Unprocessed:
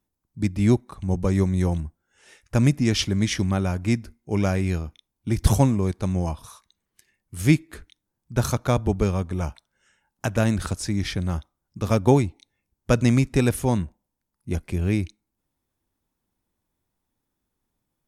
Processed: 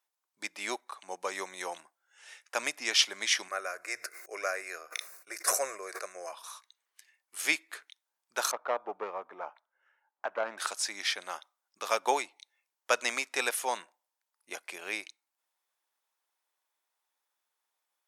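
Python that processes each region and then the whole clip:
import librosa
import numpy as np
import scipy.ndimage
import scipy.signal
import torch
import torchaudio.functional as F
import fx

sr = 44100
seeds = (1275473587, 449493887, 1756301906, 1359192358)

y = fx.chain(x, sr, fx.fixed_phaser(hz=880.0, stages=6),
    fx.sustainer(db_per_s=48.0), at=(3.48, 6.33))
y = fx.chain(y, sr, fx.self_delay(depth_ms=0.17),
    fx.lowpass(hz=1200.0, slope=12), at=(8.51, 10.58))
y = scipy.signal.sosfilt(scipy.signal.bessel(4, 930.0, 'highpass', norm='mag', fs=sr, output='sos'), y)
y = fx.high_shelf(y, sr, hz=8800.0, db=-5.5)
y = y * 10.0 ** (2.5 / 20.0)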